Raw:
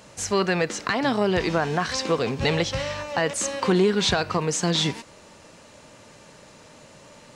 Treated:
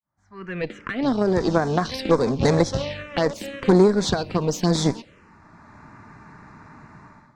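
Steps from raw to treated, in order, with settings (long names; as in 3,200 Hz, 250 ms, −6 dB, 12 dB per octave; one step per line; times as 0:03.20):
fade in at the beginning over 1.71 s
dynamic equaliser 250 Hz, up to +6 dB, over −36 dBFS, Q 0.78
low-pass that shuts in the quiet parts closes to 1,900 Hz, open at −17.5 dBFS
automatic gain control gain up to 15.5 dB
harmonic generator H 3 −16 dB, 4 −20 dB, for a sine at −0.5 dBFS
phaser swept by the level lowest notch 470 Hz, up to 2,900 Hz, full sweep at −14 dBFS
level −1.5 dB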